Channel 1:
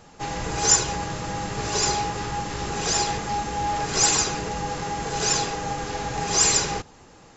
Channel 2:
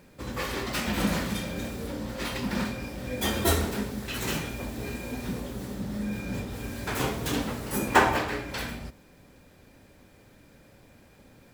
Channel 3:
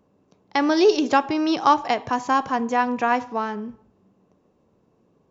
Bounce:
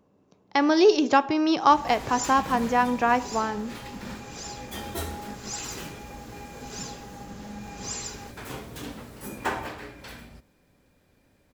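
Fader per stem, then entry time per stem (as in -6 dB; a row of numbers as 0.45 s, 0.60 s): -15.5 dB, -9.0 dB, -1.0 dB; 1.50 s, 1.50 s, 0.00 s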